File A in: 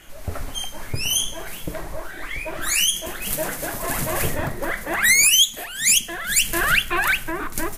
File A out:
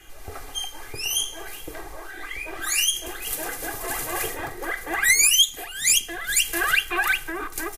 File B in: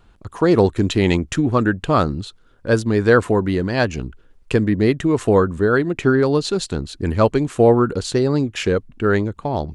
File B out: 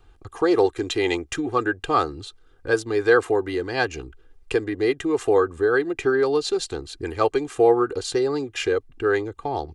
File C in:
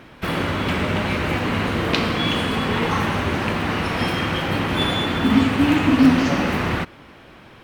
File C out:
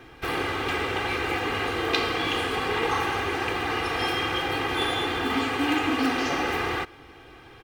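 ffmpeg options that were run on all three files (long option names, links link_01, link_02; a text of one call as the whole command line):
ffmpeg -i in.wav -filter_complex "[0:a]aecho=1:1:2.5:0.75,acrossover=split=320|1400[link_01][link_02][link_03];[link_01]acompressor=threshold=-32dB:ratio=6[link_04];[link_04][link_02][link_03]amix=inputs=3:normalize=0,volume=-4.5dB" out.wav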